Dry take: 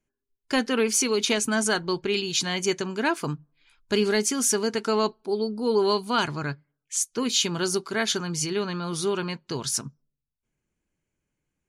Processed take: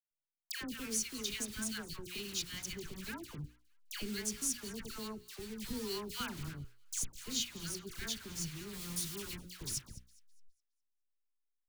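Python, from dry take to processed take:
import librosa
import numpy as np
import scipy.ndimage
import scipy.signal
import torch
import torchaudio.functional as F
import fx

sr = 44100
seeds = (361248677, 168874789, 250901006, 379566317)

y = fx.delta_hold(x, sr, step_db=-28.0)
y = fx.recorder_agc(y, sr, target_db=-20.5, rise_db_per_s=37.0, max_gain_db=30)
y = fx.high_shelf(y, sr, hz=4200.0, db=9.0, at=(8.73, 9.47))
y = fx.echo_wet_highpass(y, sr, ms=206, feedback_pct=34, hz=1500.0, wet_db=-19.0)
y = fx.leveller(y, sr, passes=1, at=(5.56, 6.38))
y = fx.tone_stack(y, sr, knobs='6-0-2')
y = fx.hum_notches(y, sr, base_hz=60, count=9)
y = fx.dispersion(y, sr, late='lows', ms=112.0, hz=1300.0)
y = F.gain(torch.from_numpy(y), 3.0).numpy()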